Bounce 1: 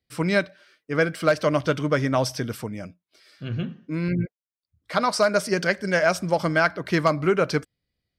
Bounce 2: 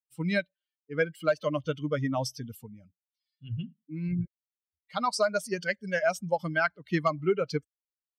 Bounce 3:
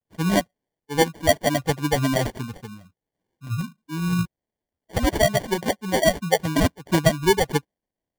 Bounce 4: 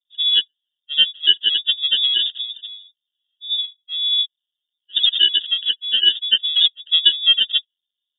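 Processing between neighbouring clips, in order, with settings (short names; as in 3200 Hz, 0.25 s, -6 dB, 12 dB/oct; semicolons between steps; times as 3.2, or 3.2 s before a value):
per-bin expansion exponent 2; gain -2.5 dB
sample-and-hold 34×; gain +7.5 dB
spectral contrast raised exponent 2.1; inverted band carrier 3600 Hz; gain +3.5 dB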